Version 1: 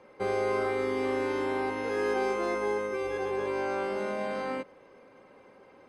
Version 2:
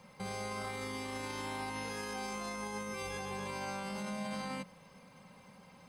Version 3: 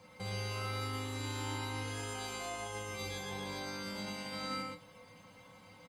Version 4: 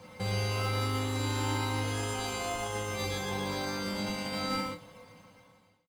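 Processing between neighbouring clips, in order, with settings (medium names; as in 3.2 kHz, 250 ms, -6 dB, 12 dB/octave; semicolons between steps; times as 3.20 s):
FFT filter 110 Hz 0 dB, 180 Hz +9 dB, 350 Hz -20 dB, 500 Hz -12 dB, 960 Hz -4 dB, 1.5 kHz -8 dB, 4.3 kHz +4 dB, 11 kHz +10 dB; peak limiter -35.5 dBFS, peak gain reduction 9.5 dB; trim +4 dB
feedback comb 100 Hz, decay 0.2 s, harmonics odd, mix 90%; on a send: delay 118 ms -3.5 dB; on the sum: trim +10 dB
fade out at the end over 1.27 s; in parallel at -8.5 dB: decimation with a swept rate 17×, swing 60% 0.52 Hz; on the sum: trim +5.5 dB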